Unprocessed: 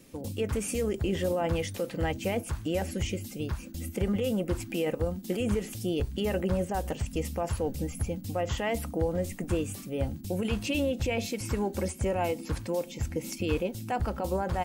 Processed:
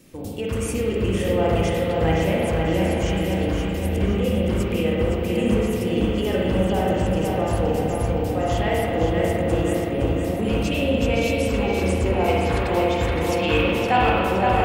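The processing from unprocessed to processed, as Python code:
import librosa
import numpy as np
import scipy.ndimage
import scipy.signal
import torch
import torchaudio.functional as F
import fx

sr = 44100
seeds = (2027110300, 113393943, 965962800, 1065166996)

y = fx.band_shelf(x, sr, hz=1700.0, db=9.0, octaves=2.8, at=(12.28, 14.1))
y = fx.echo_filtered(y, sr, ms=517, feedback_pct=60, hz=4900.0, wet_db=-3)
y = fx.rev_spring(y, sr, rt60_s=1.9, pass_ms=(37, 57), chirp_ms=50, drr_db=-4.0)
y = y * librosa.db_to_amplitude(2.0)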